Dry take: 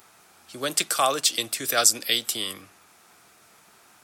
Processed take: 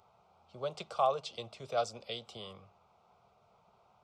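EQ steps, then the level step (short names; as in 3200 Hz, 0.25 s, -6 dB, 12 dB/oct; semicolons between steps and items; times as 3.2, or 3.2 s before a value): tape spacing loss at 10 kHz 42 dB; fixed phaser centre 720 Hz, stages 4; -1.0 dB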